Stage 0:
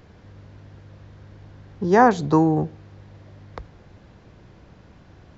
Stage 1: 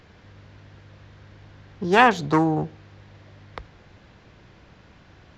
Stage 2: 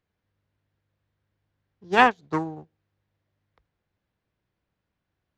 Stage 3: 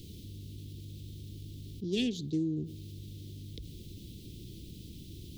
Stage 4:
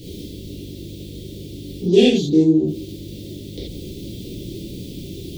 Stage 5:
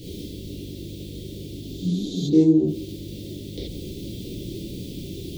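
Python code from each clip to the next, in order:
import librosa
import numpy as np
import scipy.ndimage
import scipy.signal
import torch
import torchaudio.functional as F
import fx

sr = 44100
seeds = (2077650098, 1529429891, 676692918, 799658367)

y1 = fx.self_delay(x, sr, depth_ms=0.18)
y1 = fx.peak_eq(y1, sr, hz=2700.0, db=8.0, octaves=2.8)
y1 = F.gain(torch.from_numpy(y1), -3.5).numpy()
y2 = fx.upward_expand(y1, sr, threshold_db=-32.0, expansion=2.5)
y3 = scipy.signal.sosfilt(scipy.signal.ellip(3, 1.0, 60, [350.0, 3400.0], 'bandstop', fs=sr, output='sos'), y2)
y3 = fx.env_flatten(y3, sr, amount_pct=70)
y3 = F.gain(torch.from_numpy(y3), -3.5).numpy()
y4 = fx.peak_eq(y3, sr, hz=680.0, db=14.5, octaves=1.8)
y4 = fx.rev_gated(y4, sr, seeds[0], gate_ms=110, shape='flat', drr_db=-7.5)
y4 = F.gain(torch.from_numpy(y4), 4.5).numpy()
y5 = fx.spec_repair(y4, sr, seeds[1], start_s=1.64, length_s=0.58, low_hz=200.0, high_hz=11000.0, source='both')
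y5 = F.gain(torch.from_numpy(y5), -1.5).numpy()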